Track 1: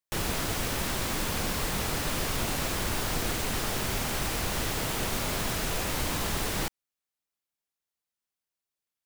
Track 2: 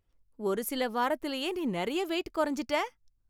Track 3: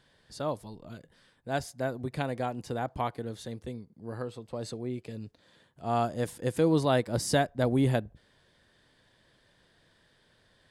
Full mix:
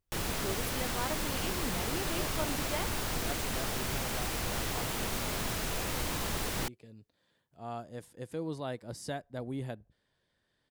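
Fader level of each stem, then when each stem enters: -4.0 dB, -9.0 dB, -12.5 dB; 0.00 s, 0.00 s, 1.75 s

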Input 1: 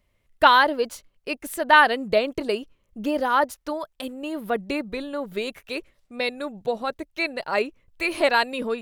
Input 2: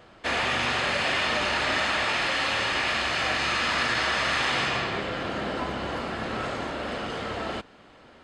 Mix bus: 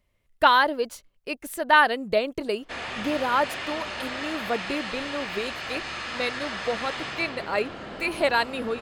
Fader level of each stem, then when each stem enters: -2.5 dB, -8.0 dB; 0.00 s, 2.45 s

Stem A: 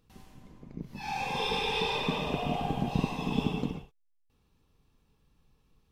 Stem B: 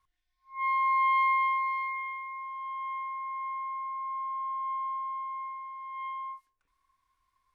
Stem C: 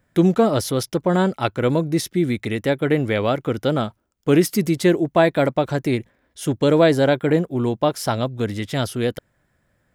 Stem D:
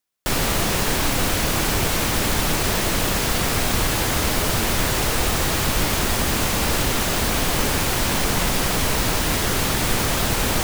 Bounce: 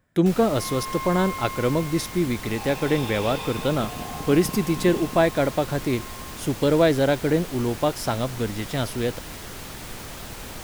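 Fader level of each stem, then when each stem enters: -4.5 dB, -8.0 dB, -3.5 dB, -16.0 dB; 1.50 s, 0.00 s, 0.00 s, 0.00 s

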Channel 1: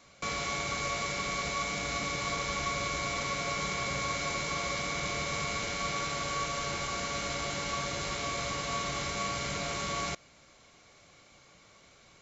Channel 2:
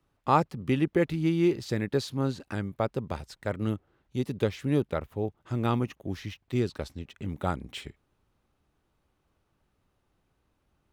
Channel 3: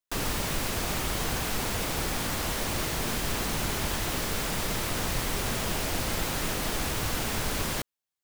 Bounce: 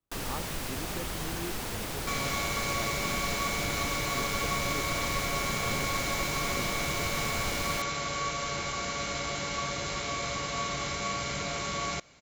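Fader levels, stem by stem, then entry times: +1.0 dB, -16.5 dB, -5.5 dB; 1.85 s, 0.00 s, 0.00 s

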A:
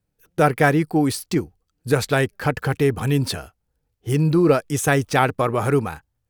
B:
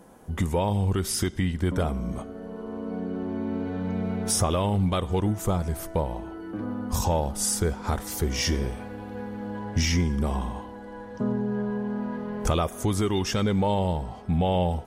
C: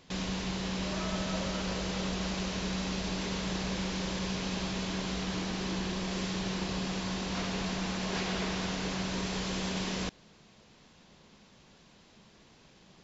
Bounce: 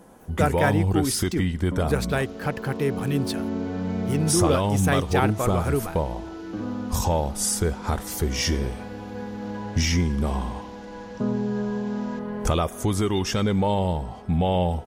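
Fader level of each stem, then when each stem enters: -6.0 dB, +1.5 dB, -16.0 dB; 0.00 s, 0.00 s, 2.10 s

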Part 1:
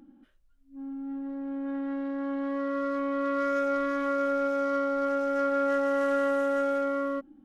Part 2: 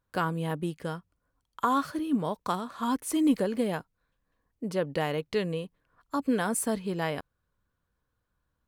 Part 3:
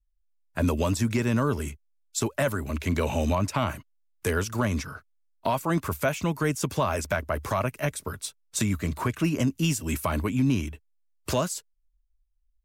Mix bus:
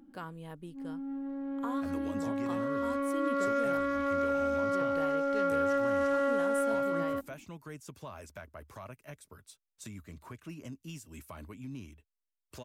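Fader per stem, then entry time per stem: -2.5 dB, -14.0 dB, -19.5 dB; 0.00 s, 0.00 s, 1.25 s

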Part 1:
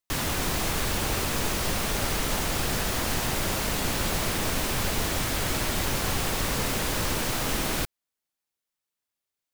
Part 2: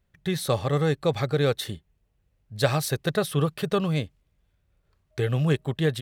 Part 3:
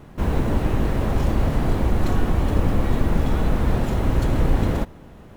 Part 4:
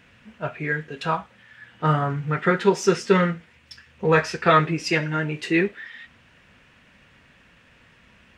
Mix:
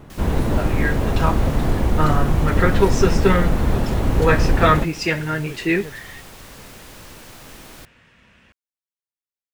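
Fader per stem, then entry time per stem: -13.5 dB, -13.5 dB, +1.5 dB, +1.0 dB; 0.00 s, 0.00 s, 0.00 s, 0.15 s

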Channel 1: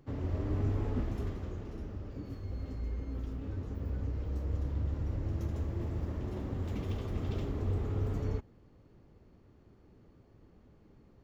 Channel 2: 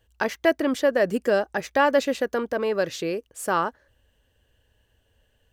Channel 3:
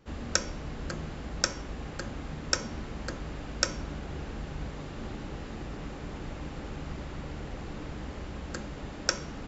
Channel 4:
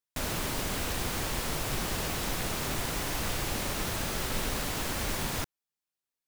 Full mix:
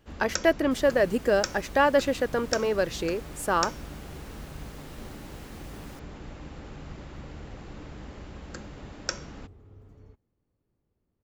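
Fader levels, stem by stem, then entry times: -18.5 dB, -1.5 dB, -3.5 dB, -18.0 dB; 1.75 s, 0.00 s, 0.00 s, 0.55 s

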